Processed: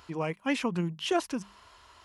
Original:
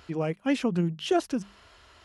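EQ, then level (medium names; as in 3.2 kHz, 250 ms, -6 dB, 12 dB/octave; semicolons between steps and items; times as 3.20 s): peaking EQ 1 kHz +10.5 dB 0.46 oct; treble shelf 4.4 kHz +7 dB; dynamic bell 2.2 kHz, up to +6 dB, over -46 dBFS, Q 1.5; -4.5 dB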